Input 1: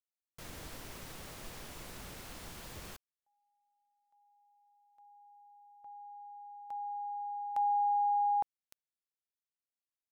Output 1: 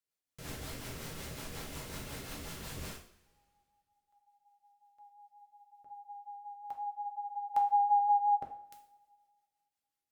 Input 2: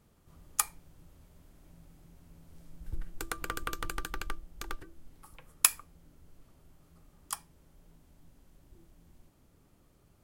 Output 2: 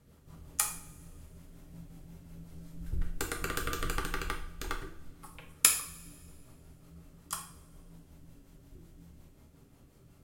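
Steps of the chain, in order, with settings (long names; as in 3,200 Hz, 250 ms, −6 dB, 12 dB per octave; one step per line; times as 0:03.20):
rotating-speaker cabinet horn 5.5 Hz
coupled-rooms reverb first 0.46 s, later 1.9 s, from −21 dB, DRR 1 dB
level +4 dB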